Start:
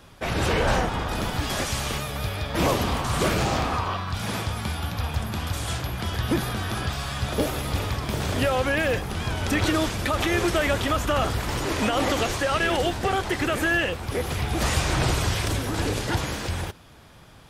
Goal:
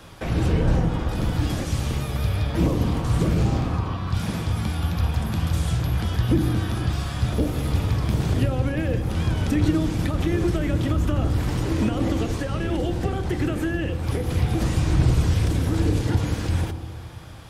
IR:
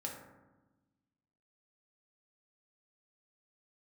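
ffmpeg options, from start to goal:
-filter_complex "[0:a]acrossover=split=340[s0][s1];[s1]acompressor=threshold=0.0112:ratio=6[s2];[s0][s2]amix=inputs=2:normalize=0,asplit=2[s3][s4];[1:a]atrim=start_sample=2205,asetrate=26019,aresample=44100[s5];[s4][s5]afir=irnorm=-1:irlink=0,volume=0.531[s6];[s3][s6]amix=inputs=2:normalize=0,volume=1.19"

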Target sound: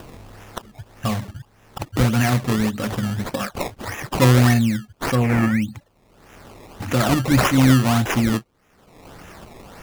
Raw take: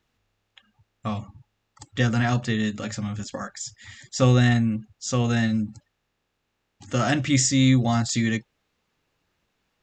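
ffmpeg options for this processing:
-filter_complex "[0:a]acompressor=mode=upward:threshold=0.0794:ratio=2.5,acrusher=samples=20:mix=1:aa=0.000001:lfo=1:lforange=20:lforate=1.7,asettb=1/sr,asplit=3[s0][s1][s2];[s0]atrim=end=5.154[s3];[s1]atrim=start=5.15:end=5.62,asetpts=PTS-STARTPTS,afade=t=in:d=0.004:c=qsin,afade=t=out:st=0.466:d=0.004:c=qsin,highshelf=f=2800:t=q:w=3:g=-7.5[s4];[s2]atrim=start=5.616[s5];[s3][s4]acrossfade=d=0.004:c1=hsin:c2=qsin[s6];[s6][s5]acrossfade=d=0.004:c1=qsin:c2=hsin,volume=1.58"

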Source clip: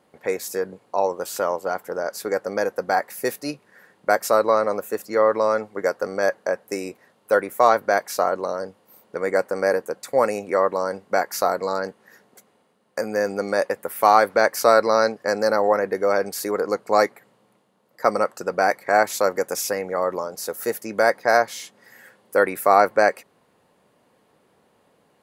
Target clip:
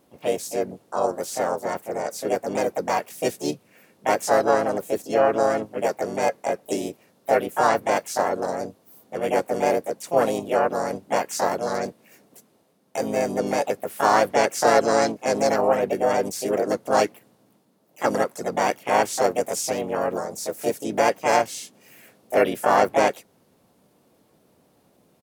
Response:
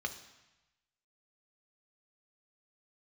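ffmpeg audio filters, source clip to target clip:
-filter_complex "[0:a]asplit=4[s0][s1][s2][s3];[s1]asetrate=35002,aresample=44100,atempo=1.25992,volume=0.251[s4];[s2]asetrate=55563,aresample=44100,atempo=0.793701,volume=0.891[s5];[s3]asetrate=66075,aresample=44100,atempo=0.66742,volume=0.562[s6];[s0][s4][s5][s6]amix=inputs=4:normalize=0,equalizer=f=1500:t=o:w=2.9:g=-12.5,acrossover=split=9100[s7][s8];[s8]acompressor=threshold=0.00355:ratio=4:attack=1:release=60[s9];[s7][s9]amix=inputs=2:normalize=0,volume=1.41"

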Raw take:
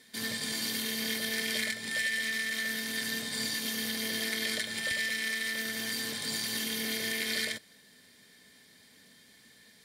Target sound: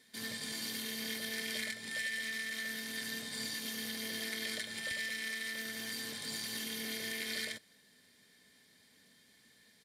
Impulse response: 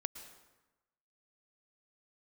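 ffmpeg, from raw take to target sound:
-af "aresample=32000,aresample=44100,volume=0.473"

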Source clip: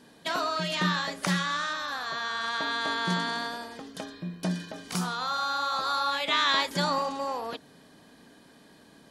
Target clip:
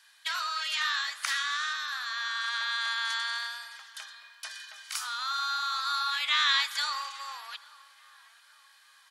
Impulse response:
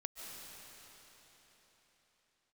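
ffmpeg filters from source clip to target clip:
-filter_complex "[0:a]highpass=f=1300:w=0.5412,highpass=f=1300:w=1.3066,asplit=2[s0][s1];[s1]adelay=840,lowpass=f=1900:p=1,volume=0.0794,asplit=2[s2][s3];[s3]adelay=840,lowpass=f=1900:p=1,volume=0.52,asplit=2[s4][s5];[s5]adelay=840,lowpass=f=1900:p=1,volume=0.52,asplit=2[s6][s7];[s7]adelay=840,lowpass=f=1900:p=1,volume=0.52[s8];[s0][s2][s4][s6][s8]amix=inputs=5:normalize=0,asplit=2[s9][s10];[1:a]atrim=start_sample=2205,asetrate=83790,aresample=44100[s11];[s10][s11]afir=irnorm=-1:irlink=0,volume=0.447[s12];[s9][s12]amix=inputs=2:normalize=0"

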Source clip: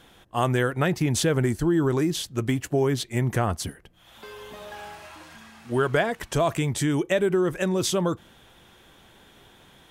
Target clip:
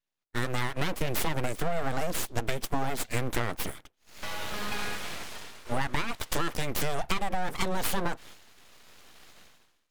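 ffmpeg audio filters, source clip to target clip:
-af "highpass=f=220:p=1,dynaudnorm=f=180:g=7:m=3.98,aeval=exprs='abs(val(0))':c=same,agate=range=0.0224:threshold=0.0158:ratio=3:detection=peak,acompressor=threshold=0.0794:ratio=6,volume=0.841"

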